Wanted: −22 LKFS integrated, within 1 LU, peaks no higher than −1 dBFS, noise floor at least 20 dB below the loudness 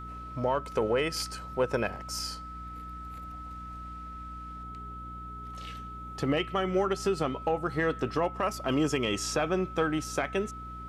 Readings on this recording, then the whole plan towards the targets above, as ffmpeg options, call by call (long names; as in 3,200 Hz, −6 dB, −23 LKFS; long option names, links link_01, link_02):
mains hum 60 Hz; hum harmonics up to 300 Hz; level of the hum −42 dBFS; interfering tone 1,300 Hz; level of the tone −41 dBFS; integrated loudness −31.0 LKFS; sample peak −16.5 dBFS; target loudness −22.0 LKFS
→ -af "bandreject=frequency=60:width_type=h:width=4,bandreject=frequency=120:width_type=h:width=4,bandreject=frequency=180:width_type=h:width=4,bandreject=frequency=240:width_type=h:width=4,bandreject=frequency=300:width_type=h:width=4"
-af "bandreject=frequency=1300:width=30"
-af "volume=9dB"